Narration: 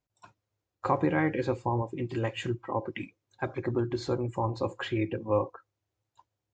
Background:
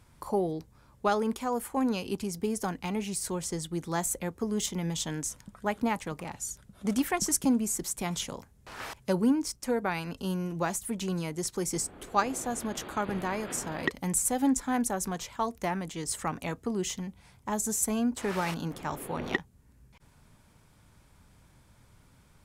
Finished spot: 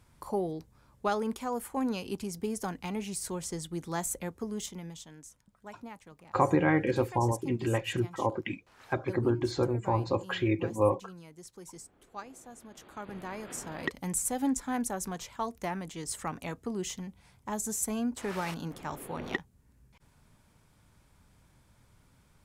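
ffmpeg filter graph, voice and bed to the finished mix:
ffmpeg -i stem1.wav -i stem2.wav -filter_complex "[0:a]adelay=5500,volume=1.5dB[link_01];[1:a]volume=10dB,afade=type=out:start_time=4.25:duration=0.82:silence=0.211349,afade=type=in:start_time=12.7:duration=1.22:silence=0.223872[link_02];[link_01][link_02]amix=inputs=2:normalize=0" out.wav

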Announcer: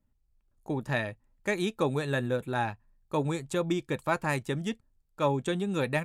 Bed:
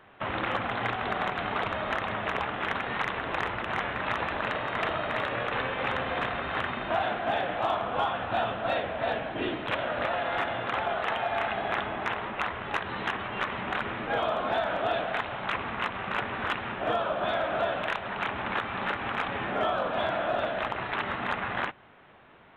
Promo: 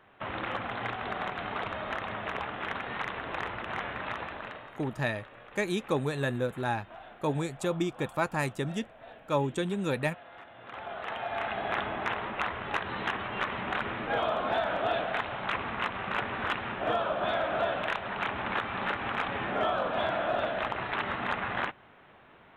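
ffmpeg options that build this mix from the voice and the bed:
ffmpeg -i stem1.wav -i stem2.wav -filter_complex "[0:a]adelay=4100,volume=-1dB[link_01];[1:a]volume=14.5dB,afade=type=out:start_time=3.96:duration=0.83:silence=0.16788,afade=type=in:start_time=10.54:duration=1.29:silence=0.112202[link_02];[link_01][link_02]amix=inputs=2:normalize=0" out.wav

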